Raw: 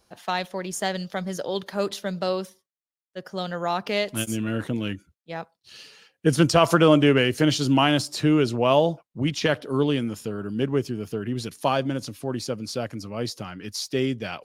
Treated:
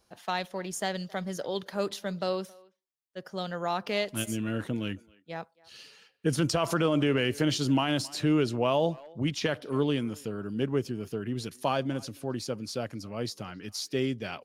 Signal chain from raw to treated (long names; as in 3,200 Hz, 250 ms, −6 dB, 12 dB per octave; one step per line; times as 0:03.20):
far-end echo of a speakerphone 270 ms, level −24 dB
brickwall limiter −11.5 dBFS, peak gain reduction 7.5 dB
level −4.5 dB